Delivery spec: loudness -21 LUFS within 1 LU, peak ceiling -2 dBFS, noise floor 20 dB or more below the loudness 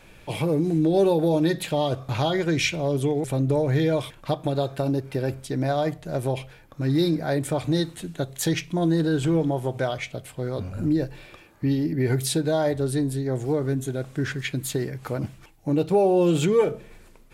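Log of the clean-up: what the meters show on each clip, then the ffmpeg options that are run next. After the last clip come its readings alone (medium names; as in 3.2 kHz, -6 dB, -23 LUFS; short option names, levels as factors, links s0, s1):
loudness -24.5 LUFS; peak level -10.5 dBFS; loudness target -21.0 LUFS
-> -af "volume=1.5"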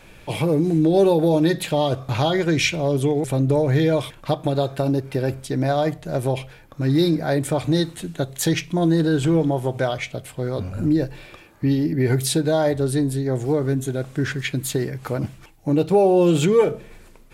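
loudness -21.0 LUFS; peak level -7.0 dBFS; noise floor -47 dBFS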